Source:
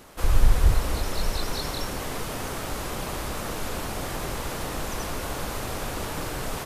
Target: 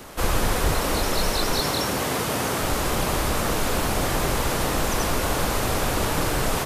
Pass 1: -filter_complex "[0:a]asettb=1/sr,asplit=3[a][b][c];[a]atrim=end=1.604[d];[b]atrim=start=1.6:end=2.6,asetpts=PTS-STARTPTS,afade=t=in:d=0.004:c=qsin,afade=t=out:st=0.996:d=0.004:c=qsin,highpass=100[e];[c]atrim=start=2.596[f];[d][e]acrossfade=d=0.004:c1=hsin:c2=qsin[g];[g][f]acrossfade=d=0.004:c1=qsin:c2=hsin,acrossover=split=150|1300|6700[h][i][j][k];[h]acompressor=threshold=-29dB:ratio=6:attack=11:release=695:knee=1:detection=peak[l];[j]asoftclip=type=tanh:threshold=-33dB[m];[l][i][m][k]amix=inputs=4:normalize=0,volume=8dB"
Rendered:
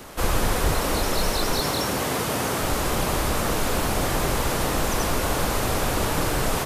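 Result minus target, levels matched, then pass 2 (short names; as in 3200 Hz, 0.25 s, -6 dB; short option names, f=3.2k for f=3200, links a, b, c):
soft clip: distortion +9 dB
-filter_complex "[0:a]asettb=1/sr,asplit=3[a][b][c];[a]atrim=end=1.604[d];[b]atrim=start=1.6:end=2.6,asetpts=PTS-STARTPTS,afade=t=in:d=0.004:c=qsin,afade=t=out:st=0.996:d=0.004:c=qsin,highpass=100[e];[c]atrim=start=2.596[f];[d][e]acrossfade=d=0.004:c1=hsin:c2=qsin[g];[g][f]acrossfade=d=0.004:c1=qsin:c2=hsin,acrossover=split=150|1300|6700[h][i][j][k];[h]acompressor=threshold=-29dB:ratio=6:attack=11:release=695:knee=1:detection=peak[l];[j]asoftclip=type=tanh:threshold=-27dB[m];[l][i][m][k]amix=inputs=4:normalize=0,volume=8dB"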